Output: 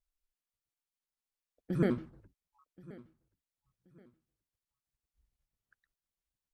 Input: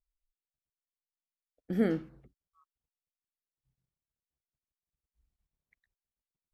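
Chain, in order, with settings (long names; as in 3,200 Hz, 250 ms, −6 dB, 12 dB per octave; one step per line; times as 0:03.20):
pitch shifter gated in a rhythm −5 semitones, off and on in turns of 76 ms
repeating echo 1,078 ms, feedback 30%, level −21 dB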